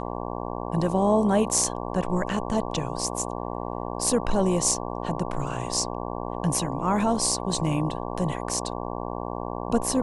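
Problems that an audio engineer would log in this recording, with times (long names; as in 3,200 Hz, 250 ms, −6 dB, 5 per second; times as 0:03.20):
mains buzz 60 Hz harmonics 19 −32 dBFS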